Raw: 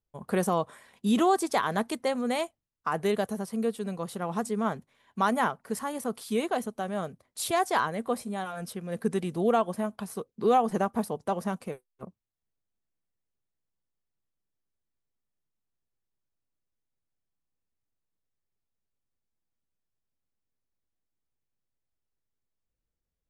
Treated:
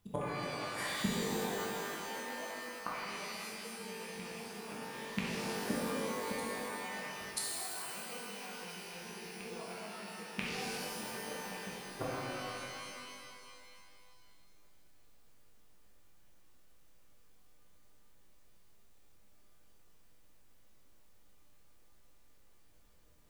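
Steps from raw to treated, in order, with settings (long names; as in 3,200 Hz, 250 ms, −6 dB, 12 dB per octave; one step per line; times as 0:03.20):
loose part that buzzes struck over −38 dBFS, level −19 dBFS
reversed playback
downward compressor 10 to 1, threshold −33 dBFS, peak gain reduction 15 dB
reversed playback
gate with flip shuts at −36 dBFS, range −31 dB
backwards echo 986 ms −15 dB
reverb with rising layers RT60 2.4 s, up +12 semitones, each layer −2 dB, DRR −6.5 dB
level +12.5 dB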